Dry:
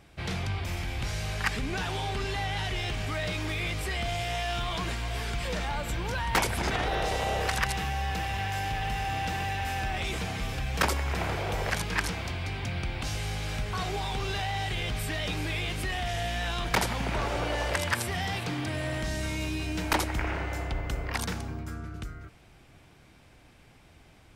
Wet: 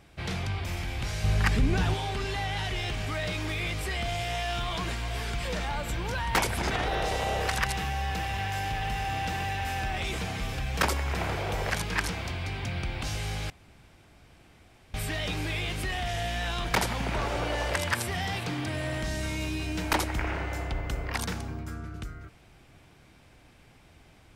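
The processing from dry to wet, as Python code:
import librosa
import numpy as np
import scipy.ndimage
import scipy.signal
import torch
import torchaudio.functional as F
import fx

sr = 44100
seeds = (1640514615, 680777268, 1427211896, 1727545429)

y = fx.low_shelf(x, sr, hz=350.0, db=10.5, at=(1.24, 1.94))
y = fx.edit(y, sr, fx.room_tone_fill(start_s=13.5, length_s=1.44), tone=tone)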